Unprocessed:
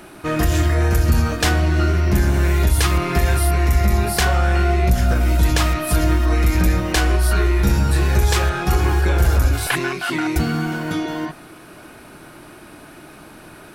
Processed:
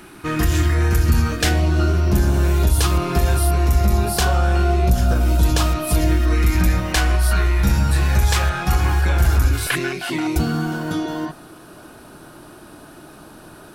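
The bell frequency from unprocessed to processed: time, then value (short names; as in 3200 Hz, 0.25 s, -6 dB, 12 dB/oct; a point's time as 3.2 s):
bell -10 dB 0.51 oct
1.27 s 610 Hz
1.72 s 2000 Hz
5.8 s 2000 Hz
6.72 s 390 Hz
9.12 s 390 Hz
10.5 s 2200 Hz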